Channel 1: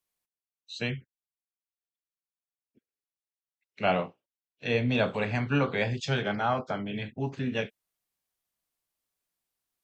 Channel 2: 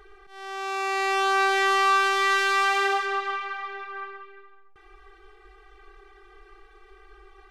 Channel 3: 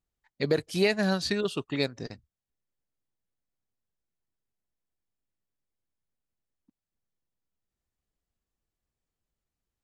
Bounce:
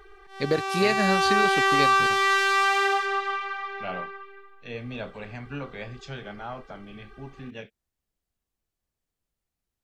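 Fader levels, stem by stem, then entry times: −9.5, +0.5, +1.0 decibels; 0.00, 0.00, 0.00 seconds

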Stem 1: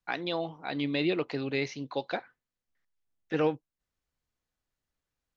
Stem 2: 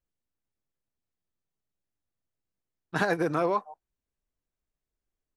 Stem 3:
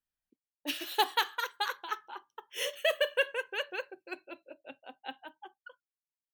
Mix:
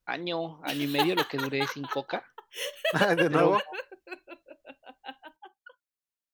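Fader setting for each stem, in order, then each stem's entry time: +0.5, +2.0, 0.0 decibels; 0.00, 0.00, 0.00 seconds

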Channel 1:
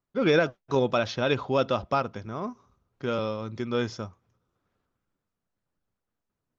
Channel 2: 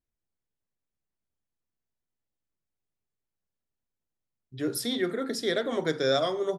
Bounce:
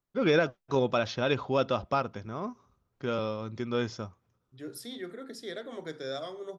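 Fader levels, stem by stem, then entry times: −2.5, −11.5 decibels; 0.00, 0.00 seconds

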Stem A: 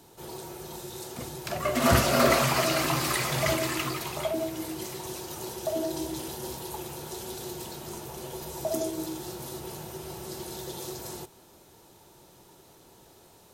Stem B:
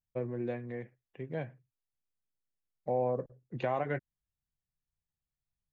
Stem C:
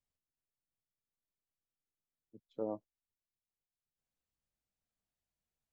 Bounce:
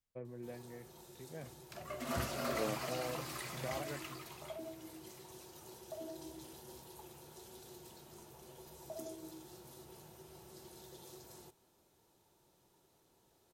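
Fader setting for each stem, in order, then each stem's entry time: −16.5, −11.5, −1.0 decibels; 0.25, 0.00, 0.00 seconds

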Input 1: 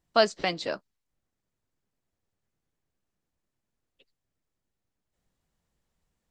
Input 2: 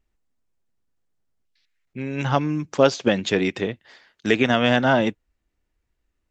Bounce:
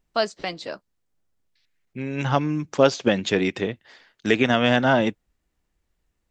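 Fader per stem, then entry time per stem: −1.5, −0.5 decibels; 0.00, 0.00 seconds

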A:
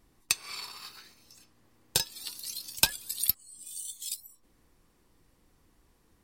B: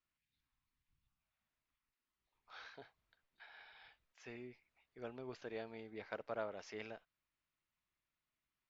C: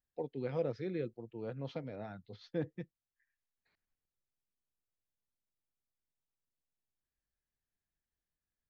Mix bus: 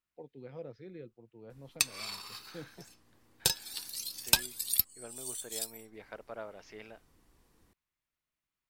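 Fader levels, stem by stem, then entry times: −1.0, −1.0, −9.5 decibels; 1.50, 0.00, 0.00 seconds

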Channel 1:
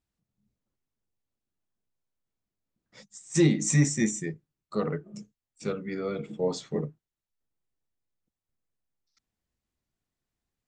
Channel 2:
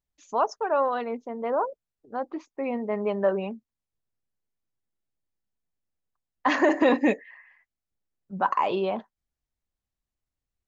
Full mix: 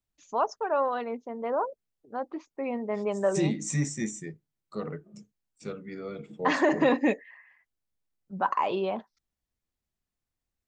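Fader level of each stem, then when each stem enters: −6.0, −2.5 decibels; 0.00, 0.00 seconds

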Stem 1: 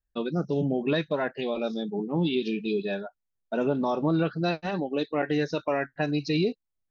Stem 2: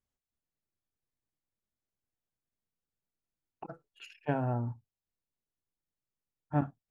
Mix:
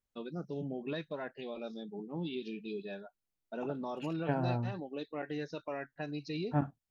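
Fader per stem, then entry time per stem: −12.5, −1.5 decibels; 0.00, 0.00 seconds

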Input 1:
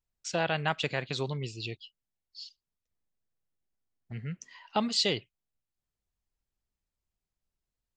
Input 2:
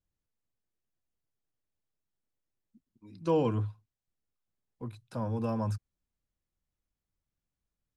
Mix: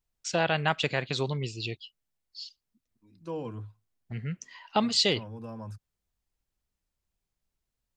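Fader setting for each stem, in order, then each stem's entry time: +3.0, −9.0 decibels; 0.00, 0.00 seconds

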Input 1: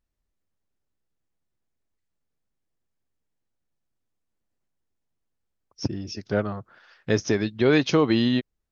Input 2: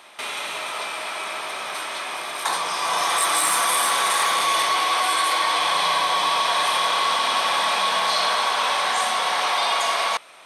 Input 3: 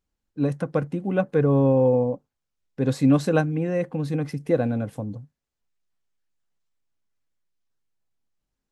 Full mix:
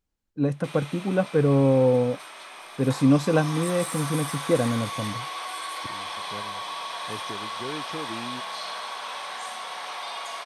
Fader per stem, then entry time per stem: −16.5, −13.0, −0.5 decibels; 0.00, 0.45, 0.00 seconds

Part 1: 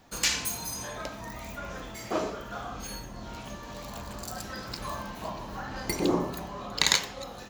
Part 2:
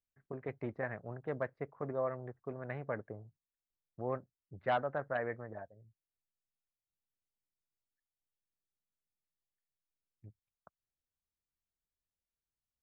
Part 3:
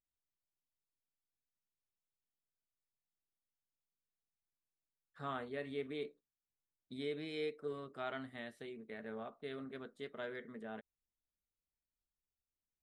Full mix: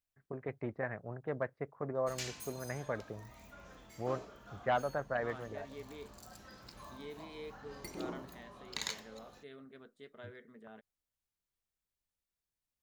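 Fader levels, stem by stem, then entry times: −16.0, +0.5, −7.0 decibels; 1.95, 0.00, 0.00 seconds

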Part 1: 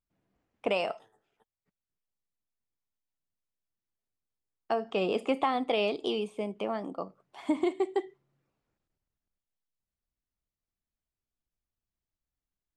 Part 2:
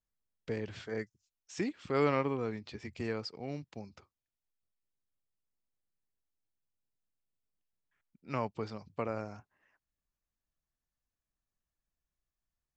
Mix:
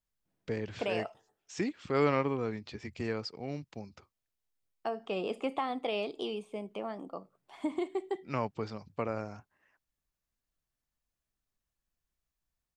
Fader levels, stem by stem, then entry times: −5.5, +1.5 decibels; 0.15, 0.00 seconds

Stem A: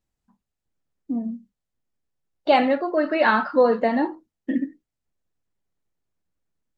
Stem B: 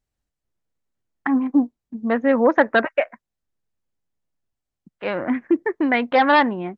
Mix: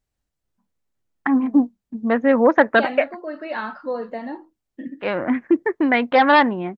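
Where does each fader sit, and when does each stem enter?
−9.5, +1.5 decibels; 0.30, 0.00 seconds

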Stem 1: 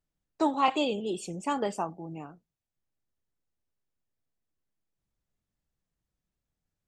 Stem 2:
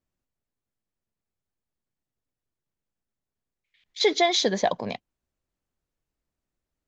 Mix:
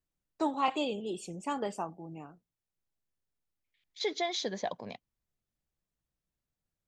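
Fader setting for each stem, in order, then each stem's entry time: −4.5, −11.5 decibels; 0.00, 0.00 seconds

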